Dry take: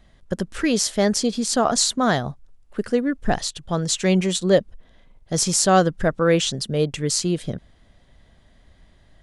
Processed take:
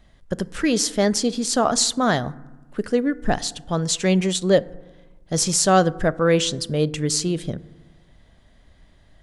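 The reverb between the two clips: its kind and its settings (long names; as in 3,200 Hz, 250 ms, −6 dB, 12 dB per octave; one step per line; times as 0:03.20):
feedback delay network reverb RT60 1.2 s, low-frequency decay 1.25×, high-frequency decay 0.35×, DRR 17.5 dB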